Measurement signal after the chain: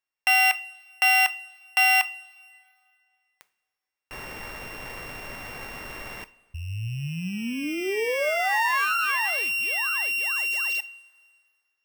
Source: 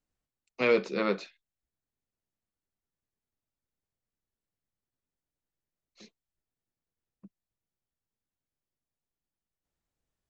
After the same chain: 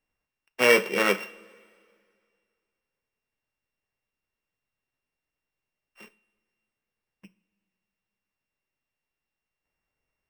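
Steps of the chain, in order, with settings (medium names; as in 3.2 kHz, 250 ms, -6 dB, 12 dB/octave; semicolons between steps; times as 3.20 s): sorted samples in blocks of 16 samples; ten-band graphic EQ 500 Hz +4 dB, 1 kHz +6 dB, 2 kHz +11 dB; two-slope reverb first 0.33 s, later 2.2 s, from -18 dB, DRR 12 dB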